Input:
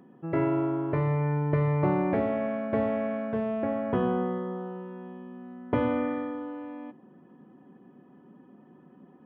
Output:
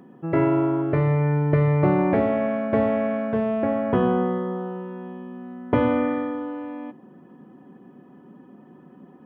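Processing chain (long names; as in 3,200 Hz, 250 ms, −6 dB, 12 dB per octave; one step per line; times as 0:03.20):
0:00.82–0:01.99: notch filter 970 Hz, Q 5.4
level +6 dB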